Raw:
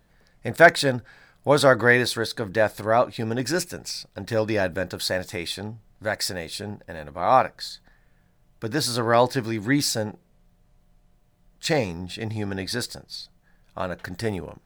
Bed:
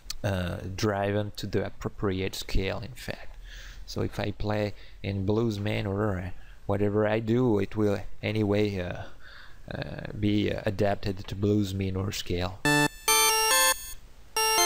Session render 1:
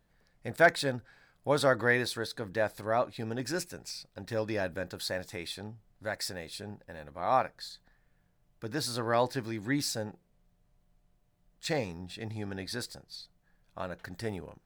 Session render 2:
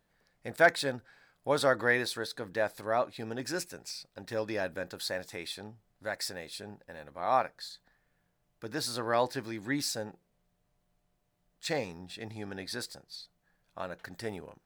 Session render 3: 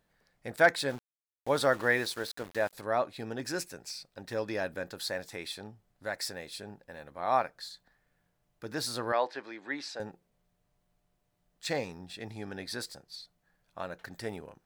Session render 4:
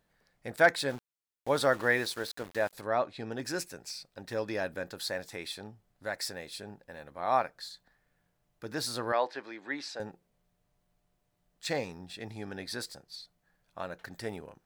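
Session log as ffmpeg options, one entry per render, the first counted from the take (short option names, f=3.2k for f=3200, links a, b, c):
-af "volume=-9dB"
-af "lowshelf=f=150:g=-9.5"
-filter_complex "[0:a]asettb=1/sr,asplit=3[a][b][c];[a]atrim=end=0.894[d];[b]atrim=start=0.89:end=2.73,asetpts=PTS-STARTPTS,afade=t=in:d=0.004:c=qsin,afade=t=out:st=1.836:d=0.004:c=qsin,aeval=exprs='val(0)*gte(abs(val(0)),0.0075)':c=same[e];[c]atrim=start=2.726[f];[d][e]acrossfade=d=0.004:c1=hsin:c2=qsin[g];[g][f]acrossfade=d=0.004:c1=qsin:c2=hsin,asettb=1/sr,asplit=3[h][i][j];[h]atrim=end=9.124[k];[i]atrim=start=9.12:end=10,asetpts=PTS-STARTPTS,afade=t=in:d=0.004:c=qsin,afade=t=out:st=0.876:d=0.004:c=qsin,highpass=430,lowpass=3.5k[l];[j]atrim=start=9.996[m];[k][l]acrossfade=d=0.004:c1=hsin:c2=qsin[n];[n][m]acrossfade=d=0.004:c1=qsin:c2=hsin"
-filter_complex "[0:a]asettb=1/sr,asplit=3[a][b][c];[a]atrim=end=2.874[d];[b]atrim=start=2.87:end=3.32,asetpts=PTS-STARTPTS,afade=t=in:d=0.004:c=qsin,afade=t=out:st=0.446:d=0.004:c=qsin,lowpass=6.4k[e];[c]atrim=start=3.316[f];[d][e]acrossfade=d=0.004:c1=hsin:c2=qsin[g];[g][f]acrossfade=d=0.004:c1=qsin:c2=hsin"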